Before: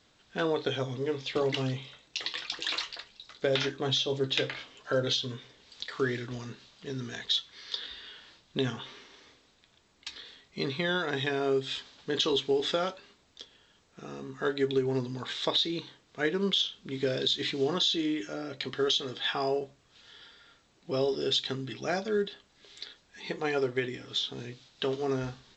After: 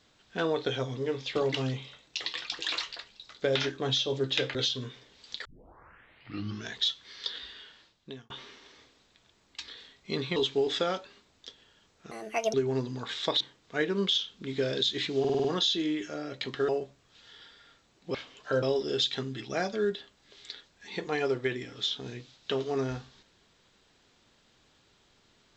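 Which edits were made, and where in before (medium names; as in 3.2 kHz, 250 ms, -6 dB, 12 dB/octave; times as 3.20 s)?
4.55–5.03 s: move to 20.95 s
5.93 s: tape start 1.26 s
7.95–8.78 s: fade out
10.84–12.29 s: delete
14.04–14.73 s: speed 162%
15.60–15.85 s: delete
17.64 s: stutter 0.05 s, 6 plays
18.88–19.49 s: delete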